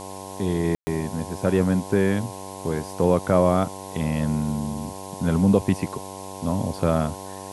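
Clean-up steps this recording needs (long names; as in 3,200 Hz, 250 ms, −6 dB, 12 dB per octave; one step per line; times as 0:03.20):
hum removal 96.1 Hz, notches 11
ambience match 0:00.75–0:00.87
noise reduction from a noise print 30 dB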